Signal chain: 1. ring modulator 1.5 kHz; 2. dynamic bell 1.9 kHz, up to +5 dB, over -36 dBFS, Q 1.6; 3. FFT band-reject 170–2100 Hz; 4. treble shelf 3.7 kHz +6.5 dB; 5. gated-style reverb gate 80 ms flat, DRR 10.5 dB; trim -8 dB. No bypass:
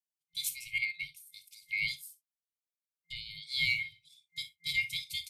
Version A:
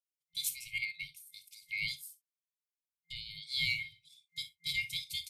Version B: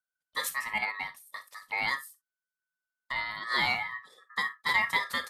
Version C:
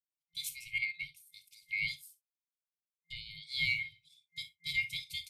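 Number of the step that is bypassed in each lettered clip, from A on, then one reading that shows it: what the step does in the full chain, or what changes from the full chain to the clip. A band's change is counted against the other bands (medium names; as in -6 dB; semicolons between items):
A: 2, loudness change -2.5 LU; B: 3, 2 kHz band +5.0 dB; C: 4, 8 kHz band -4.0 dB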